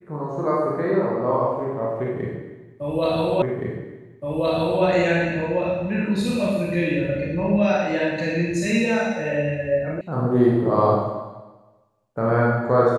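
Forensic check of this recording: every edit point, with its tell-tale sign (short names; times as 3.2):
3.42 repeat of the last 1.42 s
10.01 sound cut off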